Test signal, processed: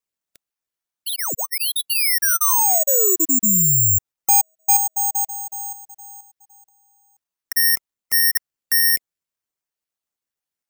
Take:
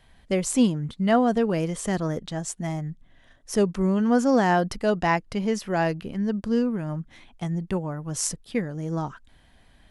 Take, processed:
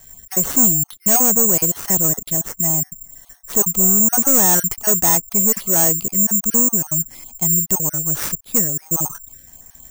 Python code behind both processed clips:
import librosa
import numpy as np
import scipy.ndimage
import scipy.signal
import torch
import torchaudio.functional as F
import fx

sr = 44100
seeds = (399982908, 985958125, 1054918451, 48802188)

y = fx.spec_dropout(x, sr, seeds[0], share_pct=21)
y = fx.high_shelf(y, sr, hz=3300.0, db=-10.5)
y = 10.0 ** (-23.5 / 20.0) * np.tanh(y / 10.0 ** (-23.5 / 20.0))
y = (np.kron(y[::6], np.eye(6)[0]) * 6)[:len(y)]
y = y * 10.0 ** (5.5 / 20.0)